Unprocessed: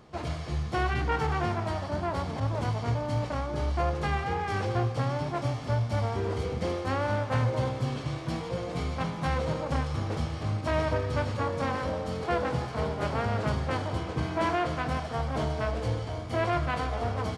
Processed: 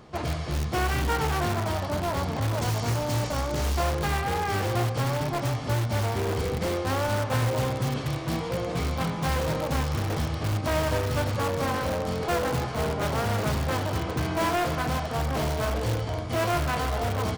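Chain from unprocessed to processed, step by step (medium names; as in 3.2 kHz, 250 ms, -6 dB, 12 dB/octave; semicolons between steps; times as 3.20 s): 2.61–3.90 s: peaking EQ 6.9 kHz +10.5 dB 1.2 oct; in parallel at -6 dB: integer overflow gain 25 dB; on the sum: trim +1 dB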